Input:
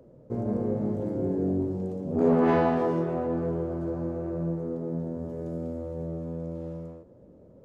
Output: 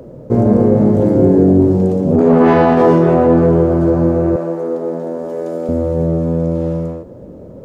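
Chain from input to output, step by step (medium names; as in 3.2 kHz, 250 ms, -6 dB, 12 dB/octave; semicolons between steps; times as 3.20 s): 4.36–5.69 s: high-pass 460 Hz 12 dB/octave; loudness maximiser +19.5 dB; trim -1 dB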